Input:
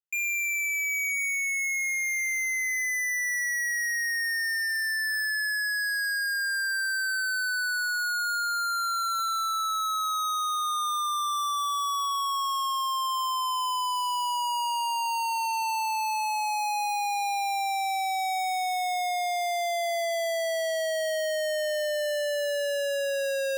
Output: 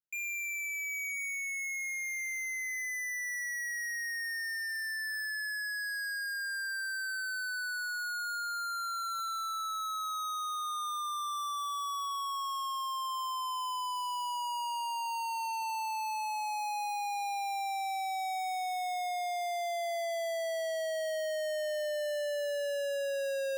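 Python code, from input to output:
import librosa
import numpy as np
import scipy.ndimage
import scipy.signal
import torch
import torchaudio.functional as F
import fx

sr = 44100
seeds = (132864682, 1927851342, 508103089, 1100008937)

y = fx.low_shelf(x, sr, hz=480.0, db=8.5)
y = F.gain(torch.from_numpy(y), -8.5).numpy()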